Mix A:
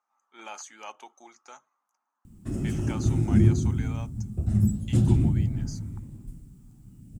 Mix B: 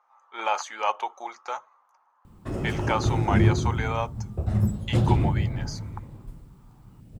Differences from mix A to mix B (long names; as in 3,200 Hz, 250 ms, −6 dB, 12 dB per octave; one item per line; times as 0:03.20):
speech +4.5 dB
master: add octave-band graphic EQ 250/500/1,000/2,000/4,000/8,000 Hz −6/+11/+11/+5/+7/−7 dB